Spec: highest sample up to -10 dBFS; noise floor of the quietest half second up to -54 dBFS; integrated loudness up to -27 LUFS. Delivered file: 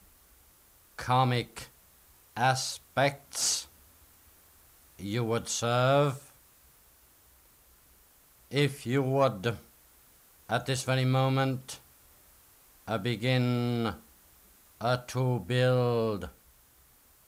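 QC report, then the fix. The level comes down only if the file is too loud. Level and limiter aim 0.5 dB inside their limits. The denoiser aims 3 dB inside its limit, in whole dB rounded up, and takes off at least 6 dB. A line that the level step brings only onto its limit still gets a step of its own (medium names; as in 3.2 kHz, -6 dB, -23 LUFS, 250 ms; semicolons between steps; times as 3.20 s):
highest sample -13.5 dBFS: pass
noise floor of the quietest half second -61 dBFS: pass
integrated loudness -29.0 LUFS: pass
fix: none needed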